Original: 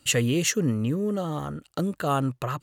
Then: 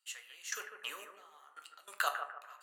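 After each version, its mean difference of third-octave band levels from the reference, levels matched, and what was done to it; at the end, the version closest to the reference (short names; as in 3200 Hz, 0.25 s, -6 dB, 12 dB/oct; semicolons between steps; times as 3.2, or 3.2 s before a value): 15.0 dB: HPF 980 Hz 24 dB/oct; step gate ".....x..xx" 144 bpm -24 dB; on a send: analogue delay 0.148 s, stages 2048, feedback 36%, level -7.5 dB; on the sum: shoebox room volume 43 m³, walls mixed, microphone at 0.31 m; gain +3.5 dB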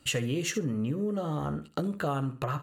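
4.0 dB: high shelf 4000 Hz -7 dB; doubler 14 ms -8.5 dB; feedback echo 65 ms, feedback 24%, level -14.5 dB; compressor, threshold -28 dBFS, peak gain reduction 9.5 dB; gain +1 dB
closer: second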